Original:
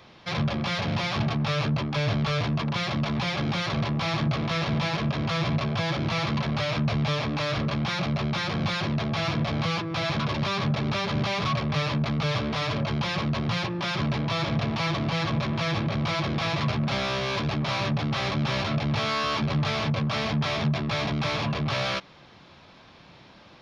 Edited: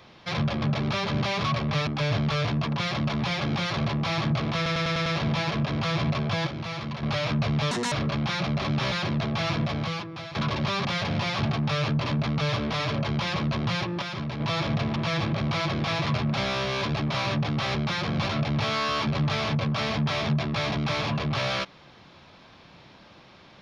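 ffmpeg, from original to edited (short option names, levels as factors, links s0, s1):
-filter_complex "[0:a]asplit=22[s0][s1][s2][s3][s4][s5][s6][s7][s8][s9][s10][s11][s12][s13][s14][s15][s16][s17][s18][s19][s20][s21];[s0]atrim=end=0.622[s22];[s1]atrim=start=10.628:end=11.882[s23];[s2]atrim=start=1.828:end=4.622[s24];[s3]atrim=start=4.518:end=4.622[s25];[s4]atrim=start=4.518:end=4.622[s26];[s5]atrim=start=4.518:end=4.622[s27];[s6]atrim=start=4.518:end=4.622[s28];[s7]atrim=start=4.518:end=5.932[s29];[s8]atrim=start=5.928:end=6.492,asetpts=PTS-STARTPTS,volume=0.473[s30];[s9]atrim=start=6.488:end=7.174[s31];[s10]atrim=start=7.17:end=7.51,asetpts=PTS-STARTPTS,asetrate=71883,aresample=44100[s32];[s11]atrim=start=7.506:end=8.212[s33];[s12]atrim=start=18.288:end=18.592[s34];[s13]atrim=start=8.698:end=10.13,asetpts=PTS-STARTPTS,afade=t=out:st=0.682:d=0.75:silence=0.188365[s35];[s14]atrim=start=10.13:end=10.632,asetpts=PTS-STARTPTS,afade=t=in:d=0.004:c=hsin:silence=0.188365[s36];[s15]atrim=start=0.618:end=1.832[s37];[s16]atrim=start=11.878:end=13.842[s38];[s17]atrim=start=13.838:end=14.222,asetpts=PTS-STARTPTS,volume=0.531[s39];[s18]atrim=start=14.218:end=14.782[s40];[s19]atrim=start=15.498:end=18.292[s41];[s20]atrim=start=8.208:end=8.702[s42];[s21]atrim=start=18.588[s43];[s22][s23]acrossfade=d=0.004:c1=hsin:c2=hsin[s44];[s44][s24]acrossfade=d=0.004:c1=hsin:c2=hsin[s45];[s45][s25]acrossfade=d=0.004:c1=hsin:c2=hsin[s46];[s46][s26]acrossfade=d=0.004:c1=hsin:c2=hsin[s47];[s47][s27]acrossfade=d=0.004:c1=hsin:c2=hsin[s48];[s48][s28]acrossfade=d=0.004:c1=hsin:c2=hsin[s49];[s49][s29]acrossfade=d=0.004:c1=hsin:c2=hsin[s50];[s50][s30]acrossfade=d=0.004:c1=hsin:c2=hsin[s51];[s51][s31]acrossfade=d=0.004:c1=hsin:c2=hsin[s52];[s52][s32]acrossfade=d=0.004:c1=hsin:c2=hsin[s53];[s53][s33]acrossfade=d=0.004:c1=hsin:c2=hsin[s54];[s54][s34]acrossfade=d=0.004:c1=hsin:c2=hsin[s55];[s35][s36]concat=n=2:v=0:a=1[s56];[s55][s56]acrossfade=d=0.004:c1=hsin:c2=hsin[s57];[s57][s37]acrossfade=d=0.004:c1=hsin:c2=hsin[s58];[s58][s38]acrossfade=d=0.004:c1=hsin:c2=hsin[s59];[s59][s39]acrossfade=d=0.004:c1=hsin:c2=hsin[s60];[s60][s40]acrossfade=d=0.004:c1=hsin:c2=hsin[s61];[s61][s41]acrossfade=d=0.004:c1=hsin:c2=hsin[s62];[s62][s42]acrossfade=d=0.004:c1=hsin:c2=hsin[s63];[s63][s43]acrossfade=d=0.004:c1=hsin:c2=hsin"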